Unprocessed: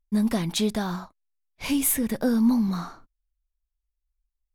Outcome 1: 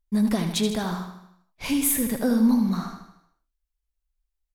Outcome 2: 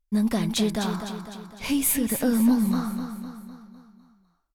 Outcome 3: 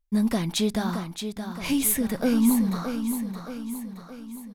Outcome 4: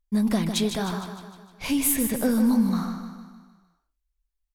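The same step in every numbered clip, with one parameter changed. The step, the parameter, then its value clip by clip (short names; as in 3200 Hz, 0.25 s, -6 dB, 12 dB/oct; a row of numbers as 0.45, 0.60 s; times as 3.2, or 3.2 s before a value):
feedback echo, time: 77, 253, 621, 153 ms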